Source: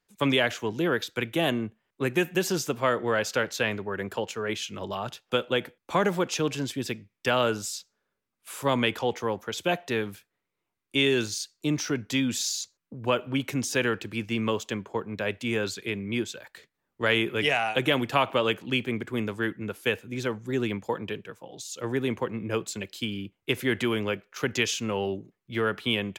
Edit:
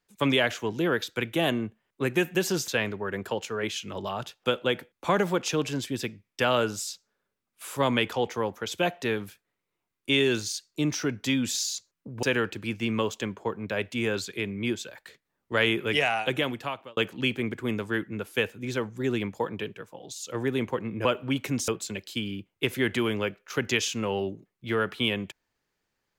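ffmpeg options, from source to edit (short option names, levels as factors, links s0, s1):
-filter_complex "[0:a]asplit=6[s0][s1][s2][s3][s4][s5];[s0]atrim=end=2.682[s6];[s1]atrim=start=3.538:end=13.092[s7];[s2]atrim=start=13.718:end=18.46,asetpts=PTS-STARTPTS,afade=t=out:st=3.912:d=0.83[s8];[s3]atrim=start=18.46:end=22.542,asetpts=PTS-STARTPTS,afade=t=in:d=0.004:c=hsin[s9];[s4]atrim=start=13.088:end=13.722[s10];[s5]atrim=start=22.538[s11];[s6][s7]acrossfade=d=0.004:c1=hsin:c2=hsin[s12];[s8][s9]concat=n=2:v=0:a=1[s13];[s12][s13]acrossfade=d=0.004:c1=hsin:c2=hsin[s14];[s14][s10]acrossfade=d=0.004:c1=hsin:c2=hsin[s15];[s15][s11]acrossfade=d=0.004:c1=hsin:c2=hsin"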